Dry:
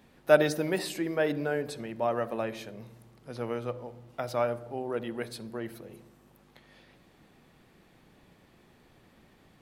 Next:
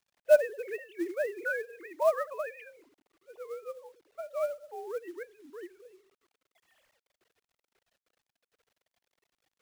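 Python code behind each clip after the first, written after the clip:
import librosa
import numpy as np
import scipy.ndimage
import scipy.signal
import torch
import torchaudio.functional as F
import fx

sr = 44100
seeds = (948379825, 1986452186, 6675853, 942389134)

y = fx.sine_speech(x, sr)
y = fx.spec_box(y, sr, start_s=1.33, length_s=1.49, low_hz=610.0, high_hz=2500.0, gain_db=9)
y = fx.quant_companded(y, sr, bits=6)
y = y * 10.0 ** (-3.0 / 20.0)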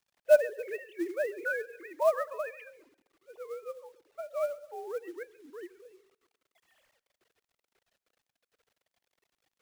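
y = fx.echo_feedback(x, sr, ms=137, feedback_pct=40, wet_db=-23.0)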